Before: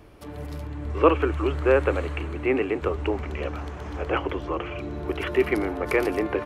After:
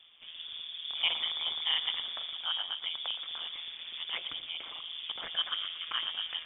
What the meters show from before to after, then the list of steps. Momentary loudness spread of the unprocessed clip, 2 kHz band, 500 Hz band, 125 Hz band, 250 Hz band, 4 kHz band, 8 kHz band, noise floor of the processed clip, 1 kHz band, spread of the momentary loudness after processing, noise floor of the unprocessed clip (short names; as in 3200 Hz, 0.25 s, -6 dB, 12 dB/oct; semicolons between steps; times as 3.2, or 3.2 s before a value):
14 LU, -10.0 dB, -33.5 dB, under -35 dB, under -35 dB, +14.0 dB, n/a, -49 dBFS, -15.5 dB, 10 LU, -38 dBFS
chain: rattling part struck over -25 dBFS, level -24 dBFS; dynamic EQ 850 Hz, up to -5 dB, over -36 dBFS, Q 0.83; ring modulator 83 Hz; on a send: thinning echo 0.117 s, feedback 55%, level -14 dB; on the sum: inverted band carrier 3500 Hz; gain -7 dB